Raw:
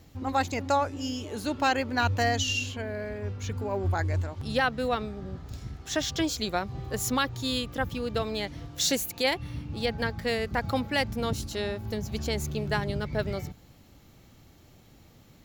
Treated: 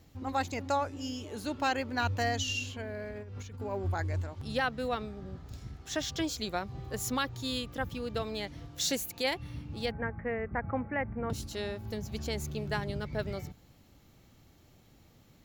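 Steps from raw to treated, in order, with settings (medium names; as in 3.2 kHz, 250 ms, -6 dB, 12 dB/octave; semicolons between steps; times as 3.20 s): 3.11–3.60 s: compressor with a negative ratio -38 dBFS, ratio -1; 9.91–11.30 s: steep low-pass 2.2 kHz 48 dB/octave; trim -5 dB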